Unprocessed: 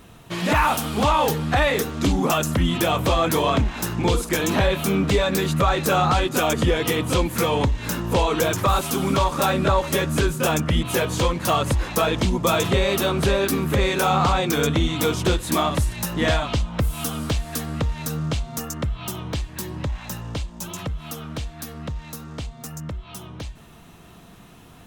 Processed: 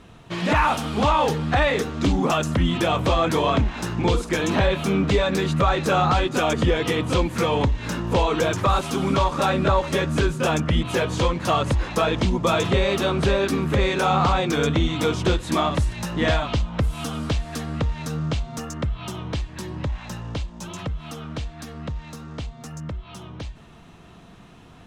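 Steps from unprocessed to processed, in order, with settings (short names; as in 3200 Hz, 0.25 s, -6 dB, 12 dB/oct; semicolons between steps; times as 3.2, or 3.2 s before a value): air absorption 67 m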